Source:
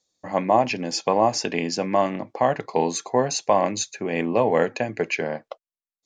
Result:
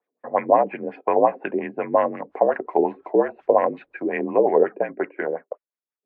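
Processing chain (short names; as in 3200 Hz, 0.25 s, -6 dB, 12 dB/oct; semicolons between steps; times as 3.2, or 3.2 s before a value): mistuned SSB -52 Hz 300–2900 Hz; 1.94–4.05 added noise white -61 dBFS; LFO low-pass sine 5.6 Hz 380–2100 Hz; gain -1 dB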